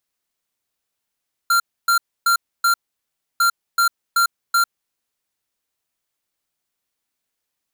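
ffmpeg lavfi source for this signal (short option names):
-f lavfi -i "aevalsrc='0.168*(2*lt(mod(1380*t,1),0.5)-1)*clip(min(mod(mod(t,1.9),0.38),0.1-mod(mod(t,1.9),0.38))/0.005,0,1)*lt(mod(t,1.9),1.52)':d=3.8:s=44100"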